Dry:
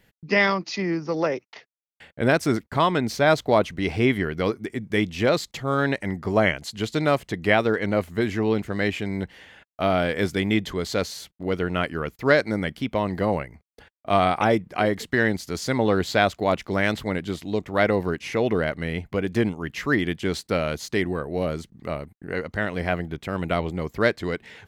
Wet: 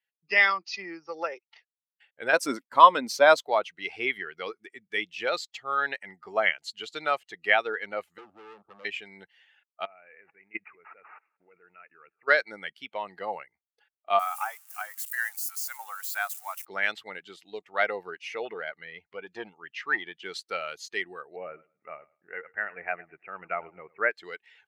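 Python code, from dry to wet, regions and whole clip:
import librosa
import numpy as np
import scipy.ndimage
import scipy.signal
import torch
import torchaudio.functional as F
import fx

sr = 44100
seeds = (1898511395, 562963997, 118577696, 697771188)

y = fx.chain(x, sr, fx.high_shelf(hz=7000.0, db=10.5),
    fx.small_body(hz=(260.0, 530.0, 1000.0), ring_ms=40, db=12), at=(2.33, 3.48))
y = fx.chain(y, sr, fx.steep_lowpass(hz=1300.0, slope=96),
    fx.clip_hard(threshold_db=-30.0),
    fx.band_squash(depth_pct=100), at=(8.18, 8.85))
y = fx.chain(y, sr, fx.level_steps(step_db=19),
    fx.echo_feedback(ms=181, feedback_pct=52, wet_db=-20.5),
    fx.resample_bad(factor=8, down='none', up='filtered'), at=(9.85, 12.28))
y = fx.chain(y, sr, fx.crossing_spikes(level_db=-19.0),
    fx.highpass(hz=880.0, slope=24),
    fx.peak_eq(hz=3600.0, db=-11.5, octaves=1.7), at=(14.19, 16.65))
y = fx.chain(y, sr, fx.lowpass(hz=5800.0, slope=12),
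    fx.transformer_sat(knee_hz=460.0), at=(18.45, 20.24))
y = fx.chain(y, sr, fx.steep_lowpass(hz=2700.0, slope=96),
    fx.echo_feedback(ms=106, feedback_pct=33, wet_db=-15.5), at=(21.36, 24.11))
y = fx.bin_expand(y, sr, power=1.5)
y = scipy.signal.sosfilt(scipy.signal.butter(2, 910.0, 'highpass', fs=sr, output='sos'), y)
y = fx.high_shelf(y, sr, hz=3600.0, db=-9.5)
y = y * 10.0 ** (5.0 / 20.0)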